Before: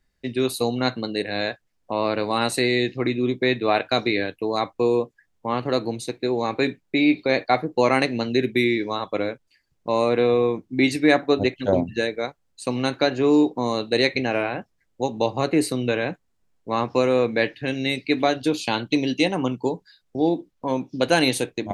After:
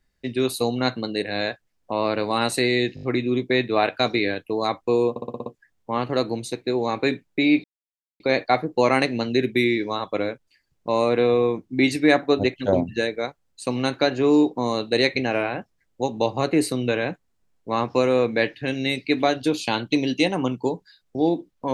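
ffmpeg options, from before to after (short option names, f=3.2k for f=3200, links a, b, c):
-filter_complex "[0:a]asplit=12[a][b][c][d][e][f][g][h][i][j][k][l];[a]atrim=end=2.972[m];[b]atrim=start=2.948:end=2.972[n];[c]atrim=start=2.948:end=2.972[o];[d]atrim=start=2.948:end=2.972[p];[e]atrim=start=2.948:end=5.082[q];[f]atrim=start=5.018:end=5.082[r];[g]atrim=start=5.018:end=5.082[s];[h]atrim=start=5.018:end=5.082[t];[i]atrim=start=5.018:end=5.082[u];[j]atrim=start=5.018:end=5.082[v];[k]atrim=start=5.018:end=7.2,asetpts=PTS-STARTPTS,afade=t=out:st=2.178:d=0.004:c=hsin,apad=pad_dur=0.56[w];[l]atrim=start=7.2,asetpts=PTS-STARTPTS,afade=t=in:d=0.004:c=hsin[x];[m][n]acrossfade=d=0.004:c1=hsin:c2=hsin[y];[y][o]acrossfade=d=0.004:c1=hsin:c2=hsin[z];[z][p]acrossfade=d=0.004:c1=hsin:c2=hsin[aa];[aa][q]acrossfade=d=0.004:c1=hsin:c2=hsin[ab];[ab][r]acrossfade=d=0.004:c1=hsin:c2=hsin[ac];[ac][s]acrossfade=d=0.004:c1=hsin:c2=hsin[ad];[ad][t]acrossfade=d=0.004:c1=hsin:c2=hsin[ae];[ae][u]acrossfade=d=0.004:c1=hsin:c2=hsin[af];[af][v]acrossfade=d=0.004:c1=hsin:c2=hsin[ag];[w][x]concat=n=2:v=0:a=1[ah];[ag][ah]acrossfade=d=0.004:c1=hsin:c2=hsin"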